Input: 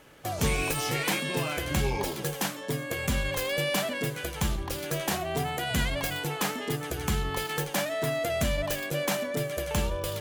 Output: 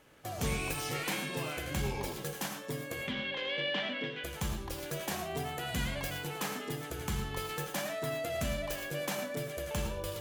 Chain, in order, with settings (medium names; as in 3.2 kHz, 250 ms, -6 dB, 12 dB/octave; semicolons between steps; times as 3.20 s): 3.01–4.24 s: cabinet simulation 200–3900 Hz, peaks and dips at 250 Hz +4 dB, 680 Hz -4 dB, 1.2 kHz -3 dB, 2 kHz +5 dB, 3.2 kHz +9 dB; gated-style reverb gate 130 ms rising, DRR 6 dB; trim -7.5 dB